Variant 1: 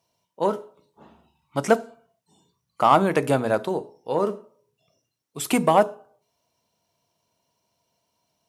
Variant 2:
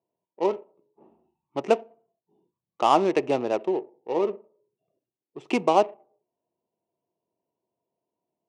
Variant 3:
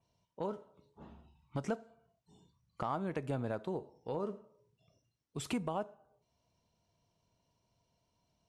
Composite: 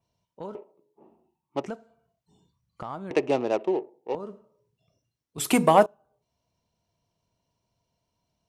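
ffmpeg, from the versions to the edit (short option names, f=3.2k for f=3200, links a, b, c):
-filter_complex "[1:a]asplit=2[a][b];[2:a]asplit=4[c][d][e][f];[c]atrim=end=0.552[g];[a]atrim=start=0.548:end=1.662[h];[d]atrim=start=1.658:end=3.112[i];[b]atrim=start=3.108:end=4.152[j];[e]atrim=start=4.148:end=5.382[k];[0:a]atrim=start=5.378:end=5.862[l];[f]atrim=start=5.858[m];[g][h]acrossfade=d=0.004:c1=hsin:c2=hsin[n];[n][i]acrossfade=d=0.004:c1=hsin:c2=hsin[o];[o][j]acrossfade=d=0.004:c1=hsin:c2=hsin[p];[p][k]acrossfade=d=0.004:c1=hsin:c2=hsin[q];[q][l]acrossfade=d=0.004:c1=hsin:c2=hsin[r];[r][m]acrossfade=d=0.004:c1=hsin:c2=hsin"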